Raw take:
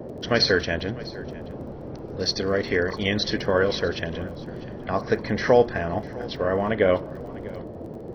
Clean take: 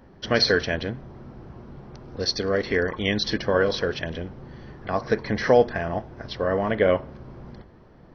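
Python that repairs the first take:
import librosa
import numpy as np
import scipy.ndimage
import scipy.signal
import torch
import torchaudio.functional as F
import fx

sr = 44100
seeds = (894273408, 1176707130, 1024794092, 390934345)

y = fx.fix_declick_ar(x, sr, threshold=6.5)
y = fx.noise_reduce(y, sr, print_start_s=7.59, print_end_s=8.09, reduce_db=7.0)
y = fx.fix_echo_inverse(y, sr, delay_ms=649, level_db=-19.5)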